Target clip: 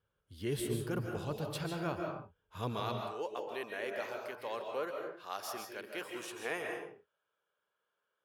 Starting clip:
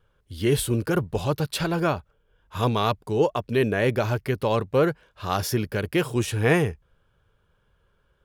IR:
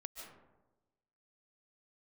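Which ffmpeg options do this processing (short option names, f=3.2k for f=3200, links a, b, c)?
-filter_complex "[0:a]asetnsamples=n=441:p=0,asendcmd='2.8 highpass f 520',highpass=68[a];[1:a]atrim=start_sample=2205,afade=t=out:st=0.38:d=0.01,atrim=end_sample=17199[b];[a][b]afir=irnorm=-1:irlink=0,volume=-8.5dB"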